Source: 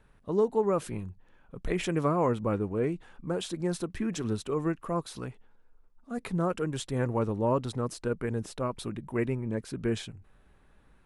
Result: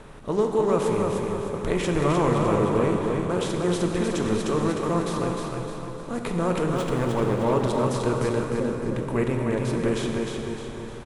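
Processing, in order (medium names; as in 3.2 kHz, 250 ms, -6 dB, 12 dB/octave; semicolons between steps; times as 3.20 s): spectral levelling over time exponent 0.6; 6.69–7.53 s: hysteresis with a dead band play -29 dBFS; 8.44–8.93 s: elliptic low-pass 540 Hz; feedback delay 305 ms, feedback 41%, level -4.5 dB; plate-style reverb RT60 3.9 s, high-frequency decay 0.75×, DRR 2.5 dB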